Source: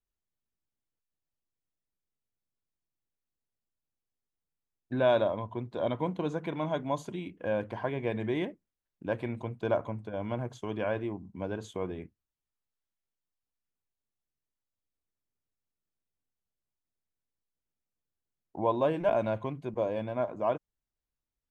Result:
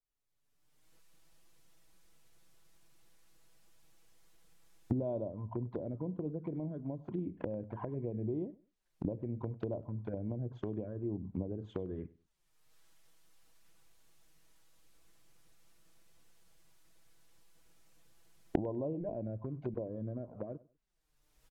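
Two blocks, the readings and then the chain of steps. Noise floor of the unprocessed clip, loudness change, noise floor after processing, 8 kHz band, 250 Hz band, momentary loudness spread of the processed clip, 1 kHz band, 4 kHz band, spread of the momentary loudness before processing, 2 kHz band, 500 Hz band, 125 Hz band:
under -85 dBFS, -7.5 dB, -78 dBFS, no reading, -3.0 dB, 5 LU, -16.5 dB, under -15 dB, 10 LU, -21.0 dB, -10.0 dB, -1.5 dB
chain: recorder AGC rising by 32 dB/s; low-pass that closes with the level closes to 390 Hz, closed at -27.5 dBFS; peaking EQ 210 Hz -2.5 dB 1.1 oct; touch-sensitive flanger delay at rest 7.1 ms, full sweep at -29.5 dBFS; on a send: feedback delay 99 ms, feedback 23%, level -21 dB; on the sum: trim -3 dB

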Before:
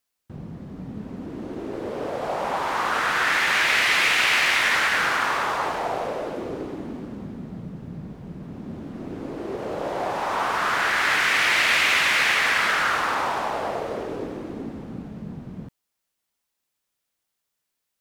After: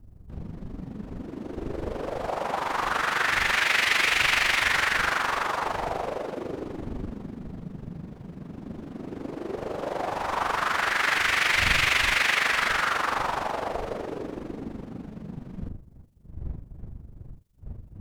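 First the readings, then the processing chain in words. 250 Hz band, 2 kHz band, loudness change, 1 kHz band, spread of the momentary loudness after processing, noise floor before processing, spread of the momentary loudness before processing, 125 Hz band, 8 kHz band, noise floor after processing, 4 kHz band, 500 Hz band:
-2.5 dB, -3.0 dB, -3.5 dB, -3.0 dB, 19 LU, -80 dBFS, 19 LU, +0.5 dB, -3.0 dB, -48 dBFS, -3.0 dB, -3.0 dB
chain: wind noise 92 Hz -39 dBFS; AM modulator 24 Hz, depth 50%

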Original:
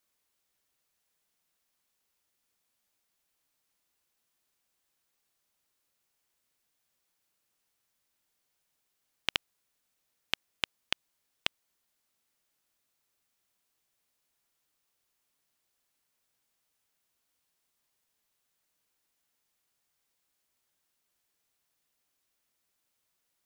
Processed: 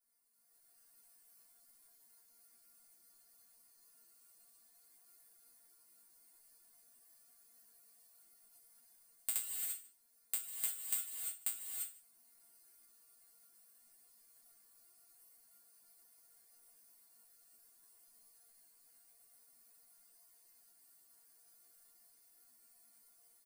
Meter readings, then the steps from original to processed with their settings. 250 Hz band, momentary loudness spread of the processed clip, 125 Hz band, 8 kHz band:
under -15 dB, 6 LU, under -25 dB, +13.0 dB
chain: band-stop 3.9 kHz, Q 24; integer overflow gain 10.5 dB; high-order bell 5.7 kHz -11.5 dB; level rider gain up to 12 dB; peak limiter -11 dBFS, peak gain reduction 9.5 dB; chord resonator A#3 fifth, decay 0.28 s; vibrato 15 Hz 5.6 cents; careless resampling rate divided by 4×, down filtered, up zero stuff; resonant high shelf 3.7 kHz +8 dB, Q 3; delay 151 ms -21.5 dB; gated-style reverb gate 370 ms rising, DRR 1 dB; trim +8.5 dB

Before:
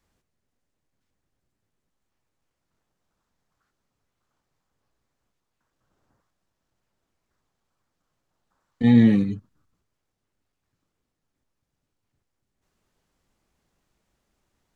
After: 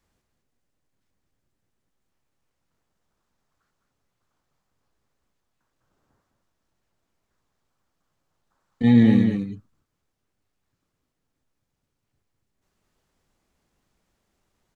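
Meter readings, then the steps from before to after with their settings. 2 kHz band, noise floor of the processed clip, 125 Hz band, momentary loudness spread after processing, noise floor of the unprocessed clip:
+1.0 dB, -79 dBFS, +1.0 dB, 15 LU, -81 dBFS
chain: delay 207 ms -6 dB

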